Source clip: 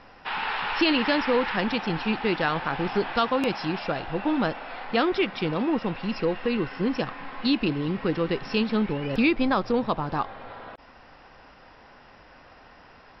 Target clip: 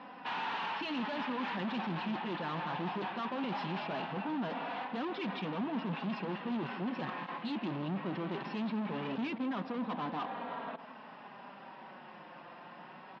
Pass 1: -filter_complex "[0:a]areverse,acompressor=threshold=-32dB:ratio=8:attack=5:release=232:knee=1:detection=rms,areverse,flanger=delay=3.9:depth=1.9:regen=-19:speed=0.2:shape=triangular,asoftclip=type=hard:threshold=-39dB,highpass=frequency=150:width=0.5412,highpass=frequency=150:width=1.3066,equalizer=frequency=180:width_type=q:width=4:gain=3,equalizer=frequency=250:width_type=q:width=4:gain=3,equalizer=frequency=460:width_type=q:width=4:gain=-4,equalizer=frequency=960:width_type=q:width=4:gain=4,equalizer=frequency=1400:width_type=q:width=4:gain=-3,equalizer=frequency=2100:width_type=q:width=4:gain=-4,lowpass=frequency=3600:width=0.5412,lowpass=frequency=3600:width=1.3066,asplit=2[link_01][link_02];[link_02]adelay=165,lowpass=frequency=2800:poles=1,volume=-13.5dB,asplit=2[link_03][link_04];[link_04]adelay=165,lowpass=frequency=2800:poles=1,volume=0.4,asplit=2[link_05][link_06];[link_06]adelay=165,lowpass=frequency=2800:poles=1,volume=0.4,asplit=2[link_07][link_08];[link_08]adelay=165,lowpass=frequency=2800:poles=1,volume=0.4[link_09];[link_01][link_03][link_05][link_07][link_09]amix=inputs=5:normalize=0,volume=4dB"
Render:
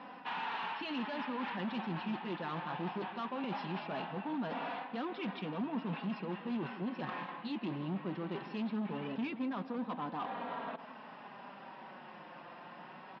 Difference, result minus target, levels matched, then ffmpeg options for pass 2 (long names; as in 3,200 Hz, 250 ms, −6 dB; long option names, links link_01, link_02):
downward compressor: peak gain reduction +6.5 dB
-filter_complex "[0:a]areverse,acompressor=threshold=-24.5dB:ratio=8:attack=5:release=232:knee=1:detection=rms,areverse,flanger=delay=3.9:depth=1.9:regen=-19:speed=0.2:shape=triangular,asoftclip=type=hard:threshold=-39dB,highpass=frequency=150:width=0.5412,highpass=frequency=150:width=1.3066,equalizer=frequency=180:width_type=q:width=4:gain=3,equalizer=frequency=250:width_type=q:width=4:gain=3,equalizer=frequency=460:width_type=q:width=4:gain=-4,equalizer=frequency=960:width_type=q:width=4:gain=4,equalizer=frequency=1400:width_type=q:width=4:gain=-3,equalizer=frequency=2100:width_type=q:width=4:gain=-4,lowpass=frequency=3600:width=0.5412,lowpass=frequency=3600:width=1.3066,asplit=2[link_01][link_02];[link_02]adelay=165,lowpass=frequency=2800:poles=1,volume=-13.5dB,asplit=2[link_03][link_04];[link_04]adelay=165,lowpass=frequency=2800:poles=1,volume=0.4,asplit=2[link_05][link_06];[link_06]adelay=165,lowpass=frequency=2800:poles=1,volume=0.4,asplit=2[link_07][link_08];[link_08]adelay=165,lowpass=frequency=2800:poles=1,volume=0.4[link_09];[link_01][link_03][link_05][link_07][link_09]amix=inputs=5:normalize=0,volume=4dB"